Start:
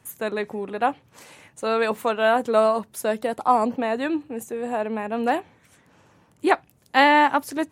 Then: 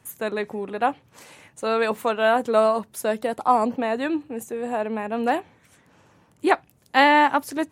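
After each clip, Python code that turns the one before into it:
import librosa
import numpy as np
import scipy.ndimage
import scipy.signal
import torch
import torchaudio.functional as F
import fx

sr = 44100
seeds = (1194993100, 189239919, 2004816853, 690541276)

y = x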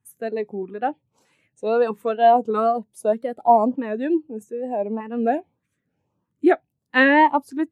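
y = fx.filter_lfo_notch(x, sr, shape='saw_up', hz=1.6, low_hz=580.0, high_hz=2200.0, q=1.6)
y = fx.wow_flutter(y, sr, seeds[0], rate_hz=2.1, depth_cents=100.0)
y = fx.spectral_expand(y, sr, expansion=1.5)
y = y * 10.0 ** (1.5 / 20.0)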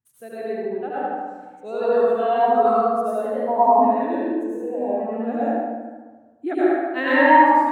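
y = scipy.signal.medfilt(x, 3)
y = fx.echo_feedback(y, sr, ms=75, feedback_pct=49, wet_db=-4.0)
y = fx.rev_plate(y, sr, seeds[1], rt60_s=1.4, hf_ratio=0.4, predelay_ms=80, drr_db=-9.5)
y = y * 10.0 ** (-11.5 / 20.0)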